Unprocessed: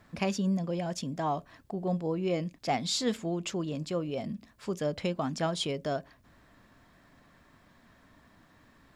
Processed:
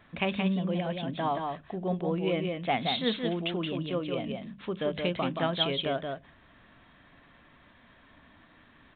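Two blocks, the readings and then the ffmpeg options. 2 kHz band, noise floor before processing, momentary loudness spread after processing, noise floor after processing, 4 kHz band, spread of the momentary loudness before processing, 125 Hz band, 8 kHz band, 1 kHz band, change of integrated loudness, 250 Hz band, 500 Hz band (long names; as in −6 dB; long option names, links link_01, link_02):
+5.5 dB, −62 dBFS, 7 LU, −59 dBFS, +4.5 dB, 7 LU, +0.5 dB, below −40 dB, +2.5 dB, +1.5 dB, +1.0 dB, +1.5 dB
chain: -af "highshelf=frequency=2600:gain=11,bandreject=frequency=50:width_type=h:width=6,bandreject=frequency=100:width_type=h:width=6,bandreject=frequency=150:width_type=h:width=6,bandreject=frequency=200:width_type=h:width=6,aecho=1:1:175:0.596,aresample=8000,aresample=44100"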